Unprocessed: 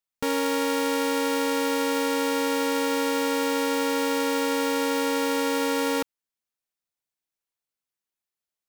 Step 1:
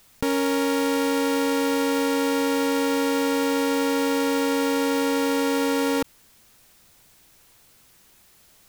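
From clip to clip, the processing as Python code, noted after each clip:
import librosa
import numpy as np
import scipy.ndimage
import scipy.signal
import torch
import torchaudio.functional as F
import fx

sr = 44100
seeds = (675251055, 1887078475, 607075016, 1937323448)

y = fx.low_shelf(x, sr, hz=220.0, db=10.0)
y = fx.env_flatten(y, sr, amount_pct=50)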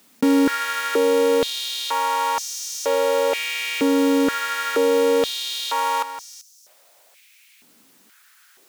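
y = x + 10.0 ** (-11.0 / 20.0) * np.pad(x, (int(388 * sr / 1000.0), 0))[:len(x)]
y = fx.filter_held_highpass(y, sr, hz=2.1, low_hz=240.0, high_hz=5800.0)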